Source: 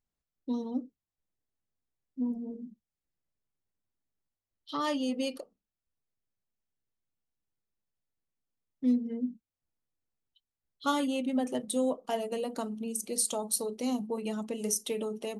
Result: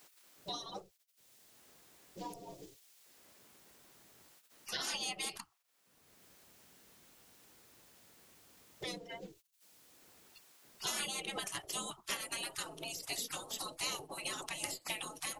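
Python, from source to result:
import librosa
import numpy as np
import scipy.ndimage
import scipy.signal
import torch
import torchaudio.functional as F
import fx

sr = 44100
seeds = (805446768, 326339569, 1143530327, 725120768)

y = fx.spec_gate(x, sr, threshold_db=-25, keep='weak')
y = fx.band_squash(y, sr, depth_pct=70)
y = y * 10.0 ** (11.0 / 20.0)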